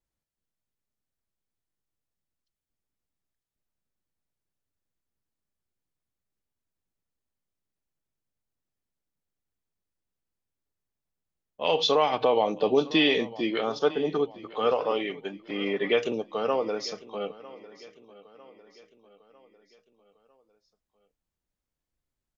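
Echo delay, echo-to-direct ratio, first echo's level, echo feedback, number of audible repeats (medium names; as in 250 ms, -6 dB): 951 ms, -18.0 dB, -19.0 dB, 48%, 3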